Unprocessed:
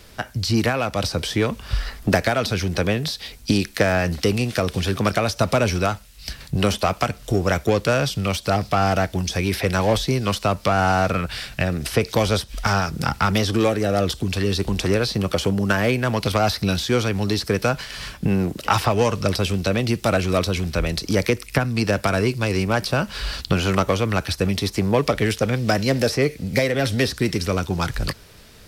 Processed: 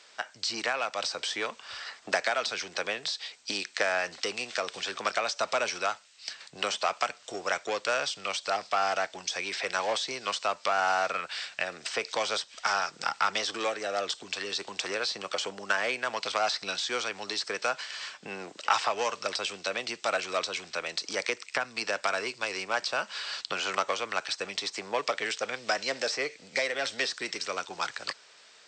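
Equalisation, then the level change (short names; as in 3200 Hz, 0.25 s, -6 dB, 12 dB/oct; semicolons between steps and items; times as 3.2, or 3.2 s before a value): HPF 740 Hz 12 dB/oct; brick-wall FIR low-pass 8500 Hz; -4.5 dB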